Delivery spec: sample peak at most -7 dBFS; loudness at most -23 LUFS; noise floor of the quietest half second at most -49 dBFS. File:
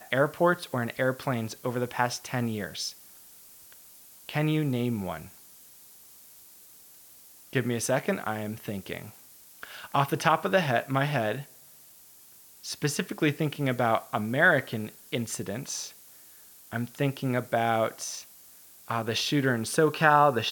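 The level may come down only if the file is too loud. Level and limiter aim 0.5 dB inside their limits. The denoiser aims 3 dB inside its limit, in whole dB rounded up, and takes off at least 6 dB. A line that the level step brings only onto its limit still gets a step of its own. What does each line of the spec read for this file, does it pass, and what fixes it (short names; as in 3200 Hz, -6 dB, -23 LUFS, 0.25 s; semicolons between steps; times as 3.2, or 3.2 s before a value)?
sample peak -5.5 dBFS: fail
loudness -28.0 LUFS: OK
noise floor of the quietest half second -53 dBFS: OK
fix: limiter -7.5 dBFS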